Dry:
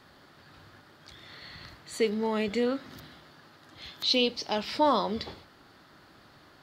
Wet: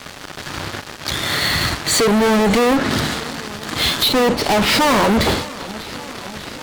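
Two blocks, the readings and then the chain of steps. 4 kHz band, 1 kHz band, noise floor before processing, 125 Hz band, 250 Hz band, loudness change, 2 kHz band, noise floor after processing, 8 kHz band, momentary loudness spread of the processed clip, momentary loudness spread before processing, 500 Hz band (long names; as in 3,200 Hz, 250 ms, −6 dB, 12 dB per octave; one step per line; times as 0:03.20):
+14.0 dB, +13.0 dB, −57 dBFS, +21.5 dB, +14.5 dB, +11.5 dB, +20.0 dB, −35 dBFS, +24.0 dB, 15 LU, 21 LU, +12.0 dB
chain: treble cut that deepens with the level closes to 970 Hz, closed at −24.5 dBFS
fuzz pedal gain 47 dB, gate −53 dBFS
feedback echo with a swinging delay time 592 ms, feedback 77%, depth 82 cents, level −19 dB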